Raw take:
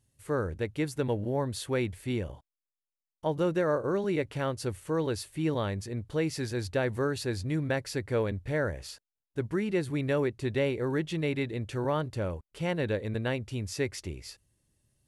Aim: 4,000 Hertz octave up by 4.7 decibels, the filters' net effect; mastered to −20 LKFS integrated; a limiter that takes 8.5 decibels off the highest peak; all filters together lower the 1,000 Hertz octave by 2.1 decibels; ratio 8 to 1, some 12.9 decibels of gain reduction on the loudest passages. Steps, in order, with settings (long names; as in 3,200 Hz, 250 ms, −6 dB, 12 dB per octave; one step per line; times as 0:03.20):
parametric band 1,000 Hz −3 dB
parametric band 4,000 Hz +6 dB
downward compressor 8 to 1, threshold −38 dBFS
level +25.5 dB
brickwall limiter −11 dBFS